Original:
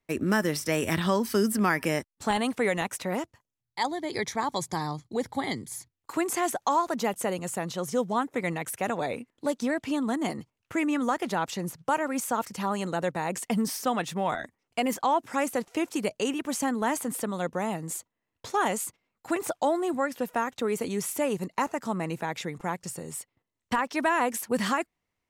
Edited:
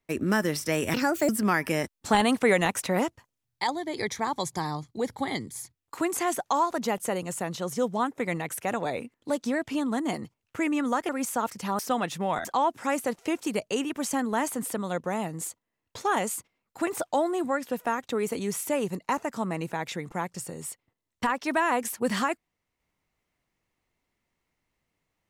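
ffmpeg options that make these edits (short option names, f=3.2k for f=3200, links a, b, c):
-filter_complex "[0:a]asplit=8[a][b][c][d][e][f][g][h];[a]atrim=end=0.944[i];[b]atrim=start=0.94:end=1.45,asetpts=PTS-STARTPTS,asetrate=64386,aresample=44100[j];[c]atrim=start=1.446:end=2.002[k];[d]atrim=start=1.998:end=3.802,asetpts=PTS-STARTPTS,volume=4.5dB[l];[e]atrim=start=3.798:end=11.252[m];[f]atrim=start=12.038:end=12.742[n];[g]atrim=start=13.748:end=14.412[o];[h]atrim=start=14.938[p];[i][j]acrossfade=d=0.004:c1=hsin:c2=hsin[q];[q][k]acrossfade=d=0.004:c1=hsin:c2=hsin[r];[r][l]acrossfade=d=0.004:c1=hsin:c2=hsin[s];[s][m]acrossfade=d=0.004:c1=hsin:c2=hsin[t];[t][n]acrossfade=d=0.004:c1=hsin:c2=hsin[u];[u][o]acrossfade=d=0.004:c1=hsin:c2=hsin[v];[v][p]acrossfade=d=0.004:c1=hsin:c2=hsin"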